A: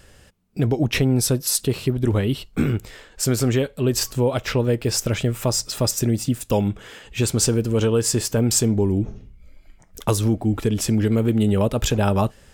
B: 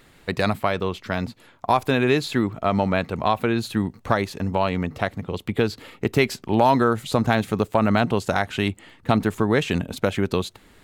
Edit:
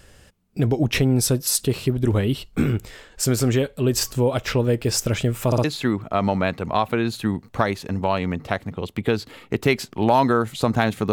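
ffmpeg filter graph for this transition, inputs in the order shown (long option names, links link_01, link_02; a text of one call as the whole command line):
ffmpeg -i cue0.wav -i cue1.wav -filter_complex "[0:a]apad=whole_dur=11.12,atrim=end=11.12,asplit=3[link_01][link_02][link_03];[link_01]atrim=end=5.522[link_04];[link_02]atrim=start=5.458:end=5.522[link_05];[link_03]atrim=start=5.458:end=5.522[link_06];[1:a]atrim=start=2.148:end=7.63[link_07];[link_04][link_05]acrossfade=duration=0.004:curve1=hsin:curve2=hsin[link_08];[link_08][link_06]acrossfade=duration=0.004:curve1=hsin:curve2=hsin[link_09];[link_09][link_07]acrossfade=duration=0.004:curve1=hsin:curve2=hsin" out.wav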